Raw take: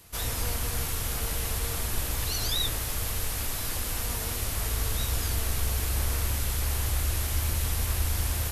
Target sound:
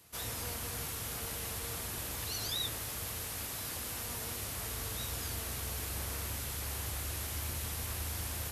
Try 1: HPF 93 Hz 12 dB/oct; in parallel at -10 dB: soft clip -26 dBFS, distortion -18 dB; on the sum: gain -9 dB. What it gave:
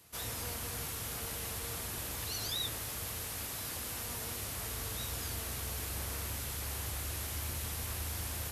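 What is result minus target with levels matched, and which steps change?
soft clip: distortion +14 dB
change: soft clip -17 dBFS, distortion -32 dB

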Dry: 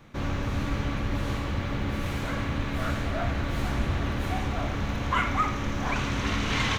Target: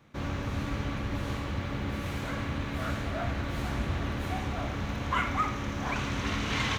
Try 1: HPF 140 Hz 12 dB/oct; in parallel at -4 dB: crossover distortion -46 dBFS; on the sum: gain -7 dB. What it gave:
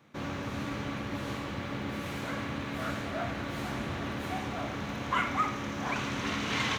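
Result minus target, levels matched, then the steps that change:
125 Hz band -4.5 dB
change: HPF 45 Hz 12 dB/oct

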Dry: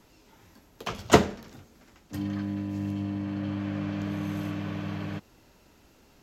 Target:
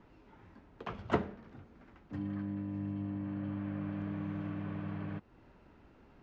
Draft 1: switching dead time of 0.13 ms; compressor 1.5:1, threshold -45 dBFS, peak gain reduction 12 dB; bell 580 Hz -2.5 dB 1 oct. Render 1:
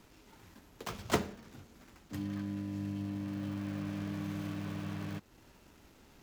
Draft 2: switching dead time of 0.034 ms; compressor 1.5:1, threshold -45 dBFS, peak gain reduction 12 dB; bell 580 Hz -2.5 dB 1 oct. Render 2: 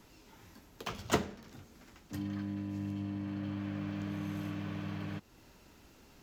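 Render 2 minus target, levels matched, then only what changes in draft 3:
2000 Hz band +3.0 dB
add after compressor: LPF 1800 Hz 12 dB/oct

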